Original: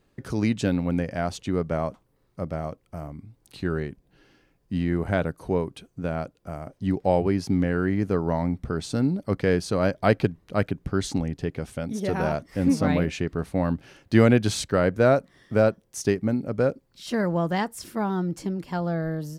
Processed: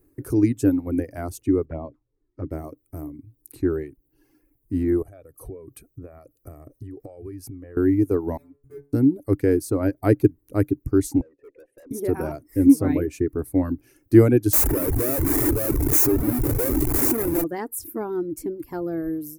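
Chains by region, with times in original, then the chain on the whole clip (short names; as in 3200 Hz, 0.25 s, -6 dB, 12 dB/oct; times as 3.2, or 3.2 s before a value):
1.65–2.51 LPF 4200 Hz 24 dB/oct + envelope flanger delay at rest 3.7 ms, full sweep at -22.5 dBFS
5.02–7.77 comb 1.7 ms, depth 52% + compressor 16:1, threshold -35 dBFS
8.37–8.93 median filter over 41 samples + backlash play -43 dBFS + metallic resonator 140 Hz, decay 0.43 s, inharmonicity 0.002
11.21–11.91 vowel filter e + bell 480 Hz +7.5 dB 2.2 oct + tube stage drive 44 dB, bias 0.2
14.53–17.44 delta modulation 64 kbps, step -26 dBFS + bell 7100 Hz +8.5 dB 0.54 oct + Schmitt trigger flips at -27 dBFS
whole clip: reverb removal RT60 1 s; EQ curve 130 Hz 0 dB, 190 Hz -17 dB, 300 Hz +9 dB, 590 Hz -9 dB, 2300 Hz -11 dB, 3200 Hz -22 dB, 7900 Hz -2 dB, 12000 Hz +12 dB; gain +4.5 dB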